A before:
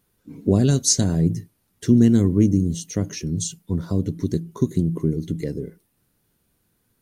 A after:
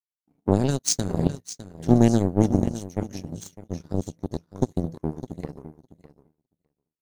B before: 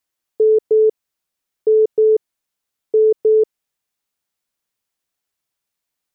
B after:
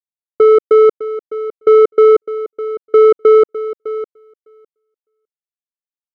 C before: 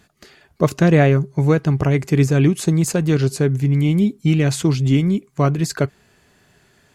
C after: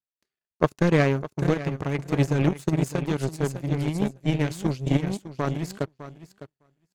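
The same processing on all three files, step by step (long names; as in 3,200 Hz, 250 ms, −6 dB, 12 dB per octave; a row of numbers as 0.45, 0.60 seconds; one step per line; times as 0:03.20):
repeating echo 606 ms, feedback 25%, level −7 dB
power curve on the samples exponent 2
normalise the peak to −2 dBFS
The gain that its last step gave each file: +2.0, +6.5, −0.5 decibels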